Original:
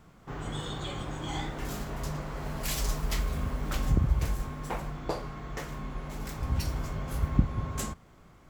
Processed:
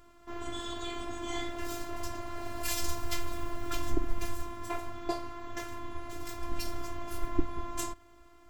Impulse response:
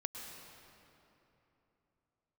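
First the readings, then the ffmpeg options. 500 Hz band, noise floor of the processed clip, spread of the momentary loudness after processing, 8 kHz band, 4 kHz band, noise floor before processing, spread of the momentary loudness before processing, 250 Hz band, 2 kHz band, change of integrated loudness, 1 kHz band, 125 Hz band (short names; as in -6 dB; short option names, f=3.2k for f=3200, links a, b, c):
0.0 dB, -56 dBFS, 7 LU, -0.5 dB, -1.0 dB, -56 dBFS, 11 LU, -2.5 dB, -1.5 dB, -5.0 dB, 0.0 dB, -13.0 dB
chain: -af "afftfilt=real='hypot(re,im)*cos(PI*b)':imag='0':win_size=512:overlap=0.75,volume=3dB"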